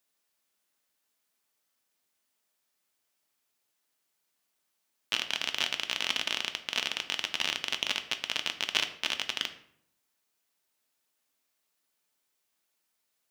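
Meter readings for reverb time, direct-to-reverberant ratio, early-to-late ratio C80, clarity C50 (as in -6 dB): 0.70 s, 7.0 dB, 15.0 dB, 12.5 dB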